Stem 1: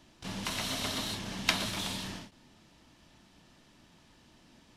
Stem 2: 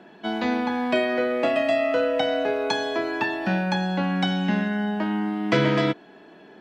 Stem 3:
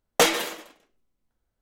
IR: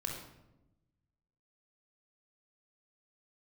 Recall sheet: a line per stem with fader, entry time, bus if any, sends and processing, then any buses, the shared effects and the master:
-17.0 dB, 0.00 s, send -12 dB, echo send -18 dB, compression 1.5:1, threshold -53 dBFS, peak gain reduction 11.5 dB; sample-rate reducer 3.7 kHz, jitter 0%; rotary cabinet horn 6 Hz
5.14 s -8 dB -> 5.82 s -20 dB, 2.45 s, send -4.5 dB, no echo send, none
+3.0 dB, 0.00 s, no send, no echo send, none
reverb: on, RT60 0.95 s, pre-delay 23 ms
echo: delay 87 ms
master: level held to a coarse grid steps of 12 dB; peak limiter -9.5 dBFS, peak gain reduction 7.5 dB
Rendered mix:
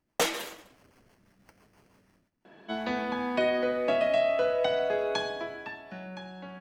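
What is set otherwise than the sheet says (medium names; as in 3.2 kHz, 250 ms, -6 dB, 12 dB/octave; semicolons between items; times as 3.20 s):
stem 1: send off; stem 3 +3.0 dB -> -8.0 dB; master: missing level held to a coarse grid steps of 12 dB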